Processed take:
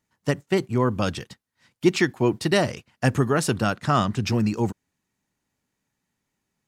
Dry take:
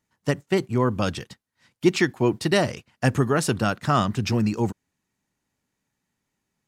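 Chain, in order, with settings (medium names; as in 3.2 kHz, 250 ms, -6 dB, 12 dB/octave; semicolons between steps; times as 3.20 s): 3.74–4.25 s: low-pass 11 kHz 12 dB/octave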